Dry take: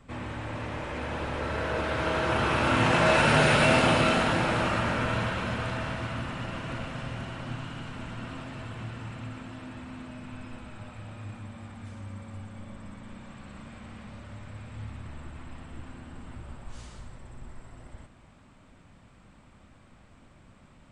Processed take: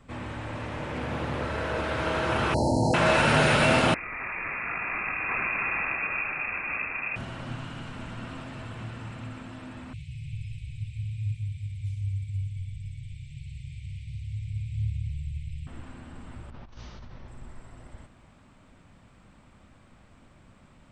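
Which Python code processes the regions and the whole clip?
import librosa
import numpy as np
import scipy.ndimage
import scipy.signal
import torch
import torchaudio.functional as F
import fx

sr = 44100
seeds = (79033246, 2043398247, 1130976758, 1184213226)

y = fx.chain(x, sr, fx.highpass(hz=100.0, slope=6),
    fx.peak_eq(hz=130.0, db=7.5, octaves=2.1),
    fx.doppler_dist(depth_ms=0.24), at=(0.8, 1.45))
y = fx.chain(y, sr, fx.brickwall_bandstop(low_hz=950.0, high_hz=4000.0),
    fx.env_flatten(amount_pct=70), at=(2.54, 2.94))
y = fx.chain(y, sr, fx.over_compress(threshold_db=-31.0, ratio=-1.0),
    fx.freq_invert(carrier_hz=2600), at=(3.94, 7.16))
y = fx.chain(y, sr, fx.cheby1_bandstop(low_hz=150.0, high_hz=2200.0, order=5),
    fx.peak_eq(hz=90.0, db=11.5, octaves=2.9), at=(9.93, 15.67))
y = fx.chain(y, sr, fx.cheby1_lowpass(hz=6000.0, order=5),
    fx.over_compress(threshold_db=-43.0, ratio=-1.0), at=(16.5, 17.28))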